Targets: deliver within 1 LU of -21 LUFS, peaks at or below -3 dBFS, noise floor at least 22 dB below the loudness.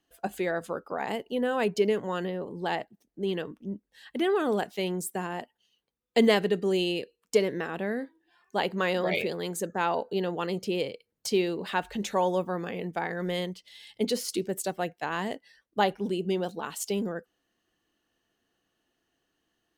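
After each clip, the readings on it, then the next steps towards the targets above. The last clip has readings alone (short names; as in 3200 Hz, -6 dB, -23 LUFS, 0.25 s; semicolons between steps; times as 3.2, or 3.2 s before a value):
loudness -30.0 LUFS; peak -10.0 dBFS; loudness target -21.0 LUFS
-> gain +9 dB; limiter -3 dBFS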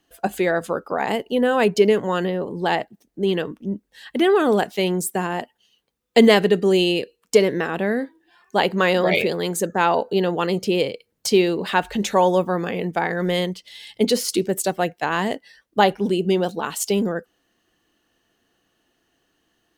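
loudness -21.0 LUFS; peak -3.0 dBFS; noise floor -72 dBFS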